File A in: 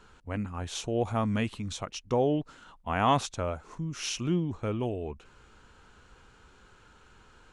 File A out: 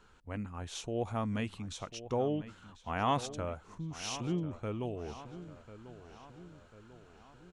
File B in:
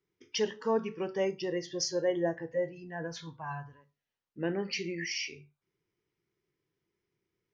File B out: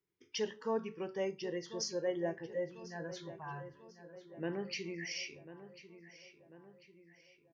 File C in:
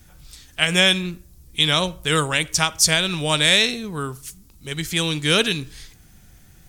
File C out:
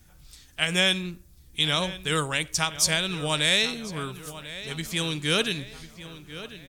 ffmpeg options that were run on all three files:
-filter_complex "[0:a]asplit=2[a][b];[b]adelay=1044,lowpass=f=3.8k:p=1,volume=-14dB,asplit=2[c][d];[d]adelay=1044,lowpass=f=3.8k:p=1,volume=0.54,asplit=2[e][f];[f]adelay=1044,lowpass=f=3.8k:p=1,volume=0.54,asplit=2[g][h];[h]adelay=1044,lowpass=f=3.8k:p=1,volume=0.54,asplit=2[i][j];[j]adelay=1044,lowpass=f=3.8k:p=1,volume=0.54[k];[a][c][e][g][i][k]amix=inputs=6:normalize=0,volume=-6dB"

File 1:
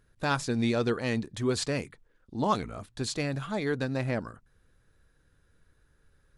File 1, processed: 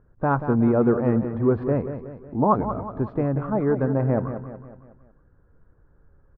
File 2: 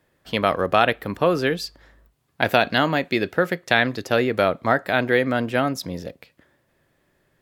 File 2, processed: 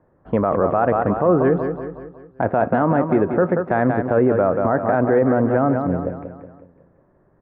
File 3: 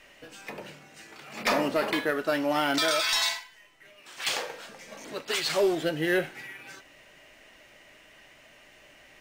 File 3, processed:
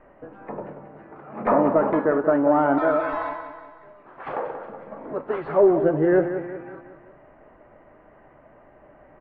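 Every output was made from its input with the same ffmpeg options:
-af "lowpass=f=1.2k:w=0.5412,lowpass=f=1.2k:w=1.3066,aecho=1:1:184|368|552|736|920:0.316|0.152|0.0729|0.035|0.0168,alimiter=level_in=14dB:limit=-1dB:release=50:level=0:latency=1,volume=-6dB"

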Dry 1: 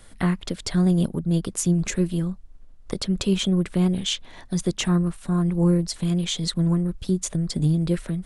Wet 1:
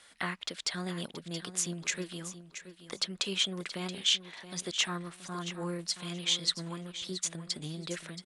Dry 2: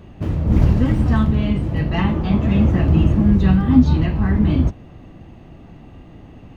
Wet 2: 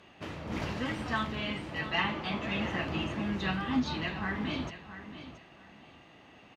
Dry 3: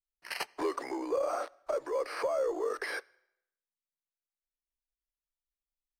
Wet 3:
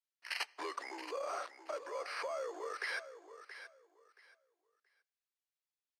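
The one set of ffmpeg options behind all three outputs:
-filter_complex "[0:a]bandpass=f=3.1k:t=q:w=0.56:csg=0,asplit=2[a][b];[b]aecho=0:1:676|1352|2028:0.251|0.0553|0.0122[c];[a][c]amix=inputs=2:normalize=0"

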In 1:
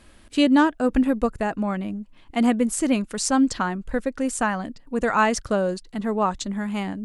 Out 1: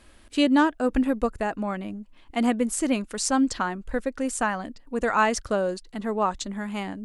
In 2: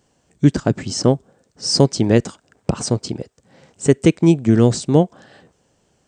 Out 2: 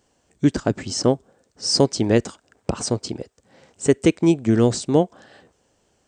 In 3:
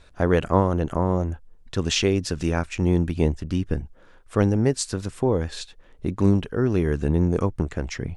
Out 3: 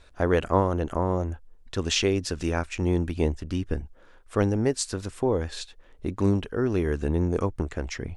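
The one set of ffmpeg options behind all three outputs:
-af "equalizer=f=150:t=o:w=0.96:g=-6.5,volume=-1.5dB"

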